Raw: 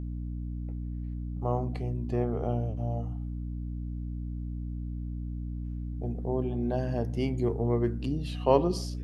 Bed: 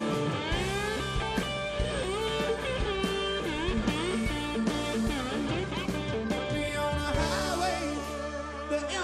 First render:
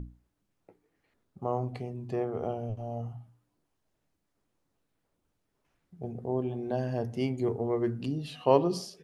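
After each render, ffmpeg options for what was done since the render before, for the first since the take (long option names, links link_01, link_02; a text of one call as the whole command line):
ffmpeg -i in.wav -af "bandreject=frequency=60:width_type=h:width=6,bandreject=frequency=120:width_type=h:width=6,bandreject=frequency=180:width_type=h:width=6,bandreject=frequency=240:width_type=h:width=6,bandreject=frequency=300:width_type=h:width=6" out.wav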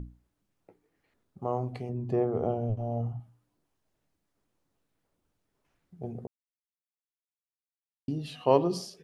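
ffmpeg -i in.wav -filter_complex "[0:a]asettb=1/sr,asplit=3[link_01][link_02][link_03];[link_01]atrim=end=1.894[link_04];[link_02]atrim=start=1.89:end=3.2,asetpts=PTS-STARTPTS,afade=type=in:duration=0.004:curve=qsin,afade=type=out:start_time=1.306:duration=0.004:curve=qsin,tiltshelf=frequency=1200:gain=5.5[link_05];[link_03]atrim=start=3.196[link_06];[link_04][link_05]acrossfade=duration=0.004:curve1=hsin:curve2=qsin[link_07];[link_07][link_06]acrossfade=duration=0.004:curve1=qsin:curve2=hsin,asplit=3[link_08][link_09][link_10];[link_08]atrim=end=6.27,asetpts=PTS-STARTPTS,afade=type=out:start_time=6.266:duration=0.004:curve=hsin[link_11];[link_09]atrim=start=6.27:end=8.08,asetpts=PTS-STARTPTS,volume=0[link_12];[link_10]atrim=start=8.08,asetpts=PTS-STARTPTS,afade=type=in:duration=0.004:curve=hsin[link_13];[link_11][link_12][link_13]concat=n=3:v=0:a=1" out.wav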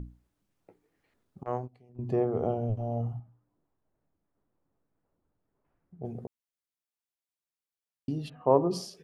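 ffmpeg -i in.wav -filter_complex "[0:a]asettb=1/sr,asplit=3[link_01][link_02][link_03];[link_01]atrim=end=1.434[link_04];[link_02]atrim=start=1.43:end=1.99,asetpts=PTS-STARTPTS,afade=type=in:duration=0.004:curve=qsin,afade=type=out:start_time=0.556:duration=0.004:curve=qsin,agate=range=-22dB:threshold=-31dB:ratio=16:release=100:detection=peak[link_05];[link_03]atrim=start=1.986[link_06];[link_04][link_05]acrossfade=duration=0.004:curve1=hsin:curve2=qsin[link_07];[link_07][link_06]acrossfade=duration=0.004:curve1=qsin:curve2=hsin,asettb=1/sr,asplit=3[link_08][link_09][link_10];[link_08]atrim=end=3.194[link_11];[link_09]atrim=start=3.19:end=6.05,asetpts=PTS-STARTPTS,afade=type=in:duration=0.004:curve=qsin,afade=type=out:start_time=2.856:duration=0.004:curve=qsin,lowpass=1300[link_12];[link_10]atrim=start=6.046[link_13];[link_11][link_12]acrossfade=duration=0.004:curve1=hsin:curve2=qsin[link_14];[link_14][link_13]acrossfade=duration=0.004:curve1=qsin:curve2=hsin,asplit=3[link_15][link_16][link_17];[link_15]afade=type=out:start_time=8.28:duration=0.02[link_18];[link_16]lowpass=frequency=1400:width=0.5412,lowpass=frequency=1400:width=1.3066,afade=type=in:start_time=8.28:duration=0.02,afade=type=out:start_time=8.7:duration=0.02[link_19];[link_17]afade=type=in:start_time=8.7:duration=0.02[link_20];[link_18][link_19][link_20]amix=inputs=3:normalize=0" out.wav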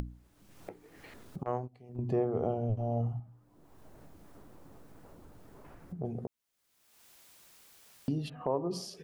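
ffmpeg -i in.wav -af "acompressor=mode=upward:threshold=-32dB:ratio=2.5,alimiter=limit=-19.5dB:level=0:latency=1:release=381" out.wav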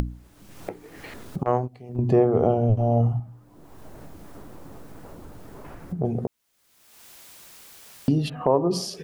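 ffmpeg -i in.wav -af "volume=11.5dB" out.wav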